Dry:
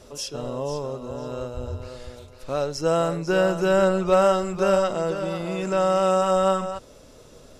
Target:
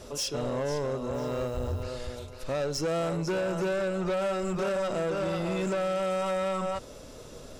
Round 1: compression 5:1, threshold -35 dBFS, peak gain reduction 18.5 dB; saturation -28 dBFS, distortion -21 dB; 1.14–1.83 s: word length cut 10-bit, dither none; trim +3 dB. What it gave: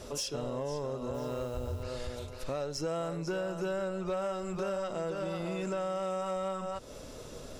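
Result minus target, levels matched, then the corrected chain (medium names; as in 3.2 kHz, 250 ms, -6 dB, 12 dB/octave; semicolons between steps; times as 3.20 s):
compression: peak gain reduction +9 dB
compression 5:1, threshold -24 dBFS, peak gain reduction 9.5 dB; saturation -28 dBFS, distortion -10 dB; 1.14–1.83 s: word length cut 10-bit, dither none; trim +3 dB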